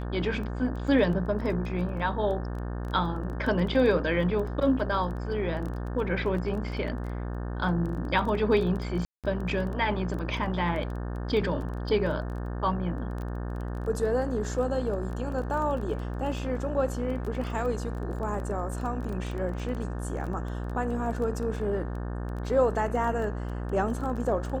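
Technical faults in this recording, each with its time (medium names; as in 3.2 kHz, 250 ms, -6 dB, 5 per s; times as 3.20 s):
buzz 60 Hz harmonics 30 -33 dBFS
crackle 14 per s -34 dBFS
9.05–9.24 s: dropout 187 ms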